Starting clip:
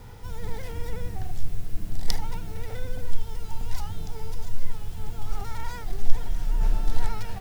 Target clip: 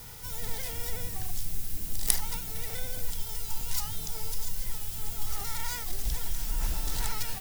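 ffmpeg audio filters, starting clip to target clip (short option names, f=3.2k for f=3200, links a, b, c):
-filter_complex "[0:a]aeval=exprs='0.158*(abs(mod(val(0)/0.158+3,4)-2)-1)':c=same,crystalizer=i=8:c=0,asplit=2[a][b];[b]asetrate=66075,aresample=44100,atempo=0.66742,volume=-9dB[c];[a][c]amix=inputs=2:normalize=0,volume=-7dB"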